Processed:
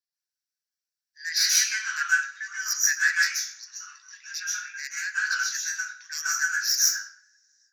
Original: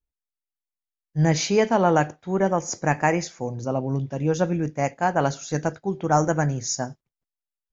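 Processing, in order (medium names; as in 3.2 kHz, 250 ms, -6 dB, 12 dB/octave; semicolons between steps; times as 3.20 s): tracing distortion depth 0.061 ms; steep high-pass 1.5 kHz 72 dB/octave; peaking EQ 2.5 kHz -8.5 dB 1.3 oct; reverberation RT60 0.50 s, pre-delay 123 ms, DRR -7.5 dB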